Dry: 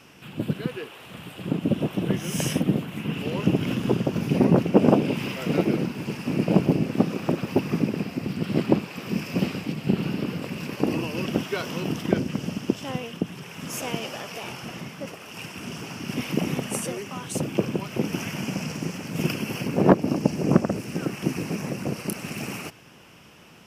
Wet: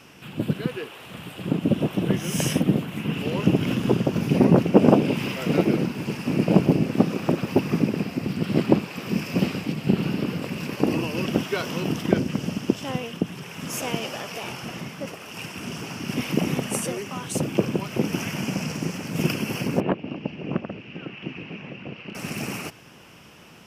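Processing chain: 19.80–22.15 s: four-pole ladder low-pass 3.2 kHz, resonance 60%; trim +2 dB

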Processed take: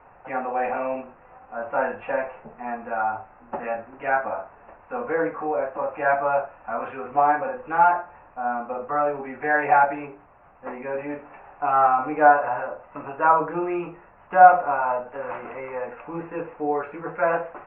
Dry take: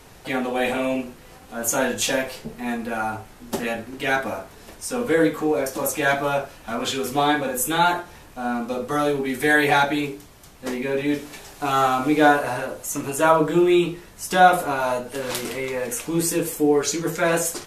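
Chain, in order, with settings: rippled Chebyshev low-pass 2.7 kHz, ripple 3 dB; high-order bell 910 Hz +12 dB; band-stop 640 Hz, Q 14; trim -8.5 dB

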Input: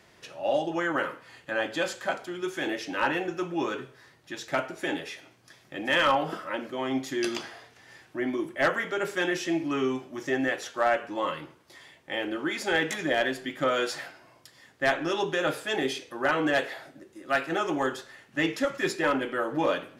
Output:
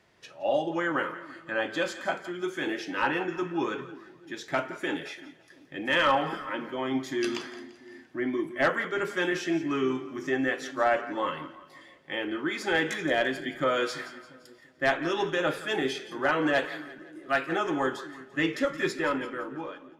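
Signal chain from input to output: fade out at the end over 1.17 s; treble shelf 6.6 kHz -7.5 dB; on a send: two-band feedback delay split 400 Hz, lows 343 ms, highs 171 ms, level -13.5 dB; on the sum: spectral noise reduction 6 dB

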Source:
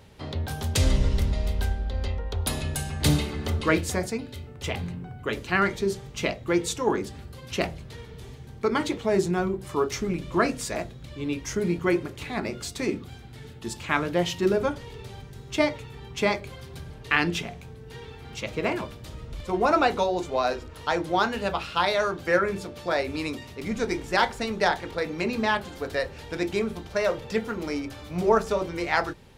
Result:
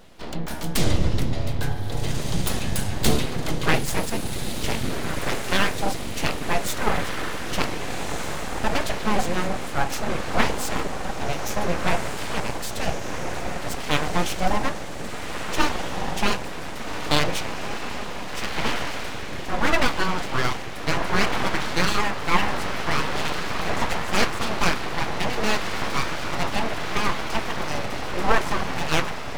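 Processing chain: echo that smears into a reverb 1578 ms, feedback 59%, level -5.5 dB; full-wave rectifier; trim +4 dB

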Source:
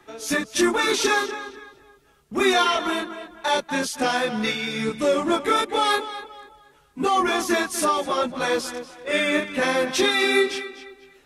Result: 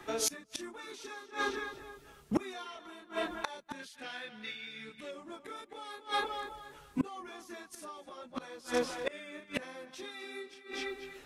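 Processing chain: 3.79–5.11 s: high-order bell 2.5 kHz +9.5 dB; inverted gate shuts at -20 dBFS, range -28 dB; trim +3 dB

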